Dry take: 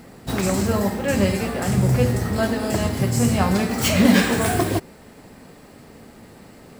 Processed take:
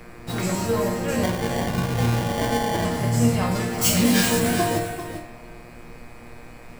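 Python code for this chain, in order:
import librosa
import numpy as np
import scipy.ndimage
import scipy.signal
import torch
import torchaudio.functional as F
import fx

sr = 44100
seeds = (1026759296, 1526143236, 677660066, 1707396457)

p1 = fx.bass_treble(x, sr, bass_db=4, treble_db=11, at=(3.81, 4.39))
p2 = fx.rider(p1, sr, range_db=3, speed_s=0.5)
p3 = p1 + (p2 * librosa.db_to_amplitude(-2.0))
p4 = fx.resonator_bank(p3, sr, root=46, chord='sus4', decay_s=0.36)
p5 = fx.dmg_buzz(p4, sr, base_hz=120.0, harmonics=21, level_db=-55.0, tilt_db=-1, odd_only=False)
p6 = fx.sample_hold(p5, sr, seeds[0], rate_hz=1300.0, jitter_pct=0, at=(1.23, 2.85))
p7 = fx.dmg_noise_colour(p6, sr, seeds[1], colour='brown', level_db=-51.0)
p8 = p7 + fx.echo_single(p7, sr, ms=392, db=-9.0, dry=0)
p9 = fx.rev_spring(p8, sr, rt60_s=1.5, pass_ms=(37,), chirp_ms=70, drr_db=8.5)
y = p9 * librosa.db_to_amplitude(6.0)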